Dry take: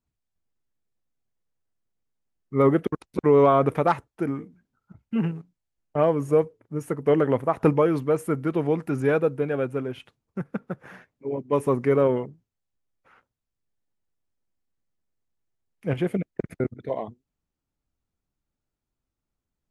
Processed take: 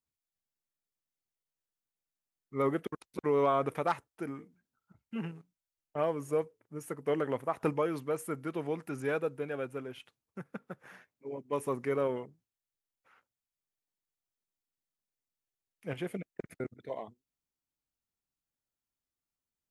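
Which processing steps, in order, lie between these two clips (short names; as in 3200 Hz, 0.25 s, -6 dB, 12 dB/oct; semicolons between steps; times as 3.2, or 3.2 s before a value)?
tilt +2 dB/oct; gain -8.5 dB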